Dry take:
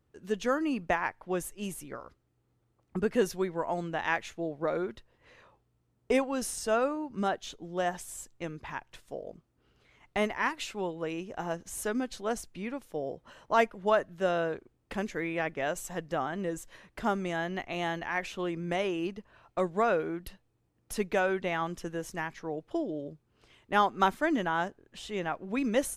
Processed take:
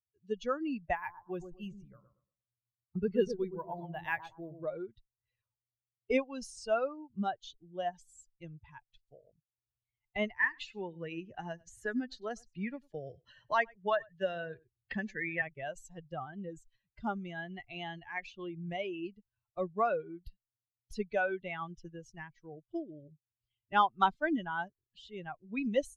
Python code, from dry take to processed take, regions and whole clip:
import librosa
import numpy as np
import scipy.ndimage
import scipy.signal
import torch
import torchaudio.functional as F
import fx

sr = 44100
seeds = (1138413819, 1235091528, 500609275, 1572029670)

y = fx.chain(x, sr, fx.echo_bbd(ms=118, stages=1024, feedback_pct=48, wet_db=-5.0),
    fx.resample_bad(factor=3, down='filtered', up='hold'), at=(0.95, 4.64))
y = fx.chain(y, sr, fx.peak_eq(hz=1800.0, db=10.0, octaves=0.23),
    fx.echo_single(ms=98, db=-15.5),
    fx.band_squash(depth_pct=70), at=(10.39, 15.42))
y = fx.bin_expand(y, sr, power=2.0)
y = scipy.signal.sosfilt(scipy.signal.butter(2, 4600.0, 'lowpass', fs=sr, output='sos'), y)
y = fx.dynamic_eq(y, sr, hz=340.0, q=1.5, threshold_db=-48.0, ratio=4.0, max_db=-3)
y = y * librosa.db_to_amplitude(1.5)